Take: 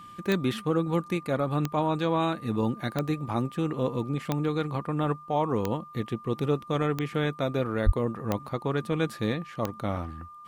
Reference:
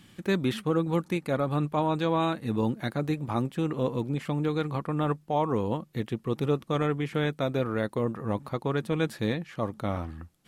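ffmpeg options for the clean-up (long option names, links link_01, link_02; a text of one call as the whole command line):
ffmpeg -i in.wav -filter_complex "[0:a]adeclick=threshold=4,bandreject=frequency=1200:width=30,asplit=3[link_01][link_02][link_03];[link_01]afade=type=out:start_time=7.85:duration=0.02[link_04];[link_02]highpass=frequency=140:width=0.5412,highpass=frequency=140:width=1.3066,afade=type=in:start_time=7.85:duration=0.02,afade=type=out:start_time=7.97:duration=0.02[link_05];[link_03]afade=type=in:start_time=7.97:duration=0.02[link_06];[link_04][link_05][link_06]amix=inputs=3:normalize=0" out.wav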